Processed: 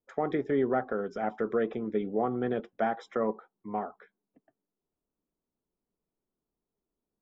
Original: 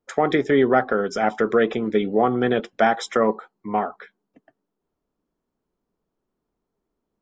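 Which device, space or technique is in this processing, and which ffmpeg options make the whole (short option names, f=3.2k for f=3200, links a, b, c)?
through cloth: -af "lowpass=6.5k,highshelf=f=2.2k:g=-14.5,volume=-9dB"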